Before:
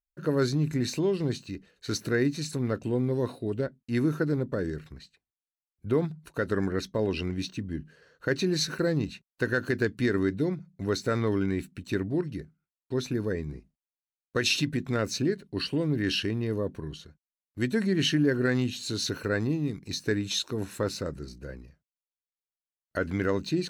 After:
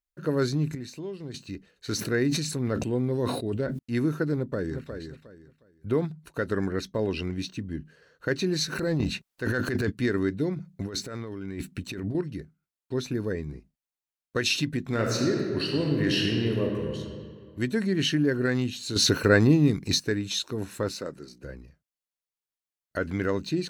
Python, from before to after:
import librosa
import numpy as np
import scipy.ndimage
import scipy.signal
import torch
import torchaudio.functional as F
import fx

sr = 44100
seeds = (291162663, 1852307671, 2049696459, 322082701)

y = fx.sustainer(x, sr, db_per_s=46.0, at=(1.92, 3.79))
y = fx.echo_throw(y, sr, start_s=4.35, length_s=0.56, ms=360, feedback_pct=25, wet_db=-7.5)
y = fx.transient(y, sr, attack_db=-6, sustain_db=11, at=(8.72, 9.9), fade=0.02)
y = fx.over_compress(y, sr, threshold_db=-34.0, ratio=-1.0, at=(10.56, 12.15))
y = fx.reverb_throw(y, sr, start_s=14.81, length_s=2.17, rt60_s=2.1, drr_db=0.0)
y = fx.bessel_highpass(y, sr, hz=250.0, order=2, at=(20.92, 21.44))
y = fx.edit(y, sr, fx.clip_gain(start_s=0.75, length_s=0.59, db=-10.0),
    fx.clip_gain(start_s=18.96, length_s=1.04, db=9.0), tone=tone)